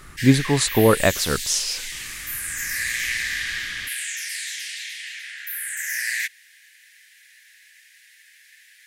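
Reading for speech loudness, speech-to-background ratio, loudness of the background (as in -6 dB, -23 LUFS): -20.0 LUFS, 7.0 dB, -27.0 LUFS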